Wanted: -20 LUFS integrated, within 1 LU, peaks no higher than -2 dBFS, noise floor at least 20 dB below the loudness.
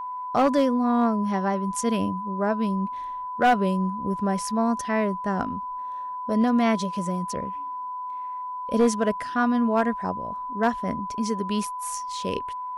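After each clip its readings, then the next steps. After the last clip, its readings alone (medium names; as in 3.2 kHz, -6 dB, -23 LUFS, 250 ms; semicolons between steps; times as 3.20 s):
clipped samples 0.3%; clipping level -13.5 dBFS; steady tone 1 kHz; tone level -30 dBFS; loudness -25.5 LUFS; peak level -13.5 dBFS; loudness target -20.0 LUFS
-> clip repair -13.5 dBFS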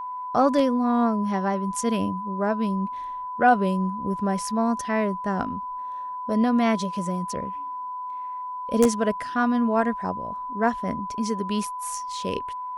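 clipped samples 0.0%; steady tone 1 kHz; tone level -30 dBFS
-> band-stop 1 kHz, Q 30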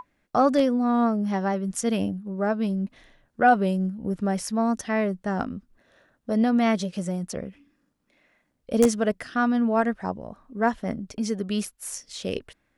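steady tone not found; loudness -25.5 LUFS; peak level -5.0 dBFS; loudness target -20.0 LUFS
-> trim +5.5 dB; peak limiter -2 dBFS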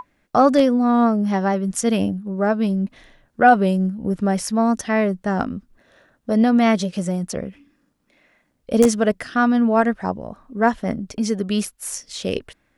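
loudness -20.0 LUFS; peak level -2.0 dBFS; noise floor -66 dBFS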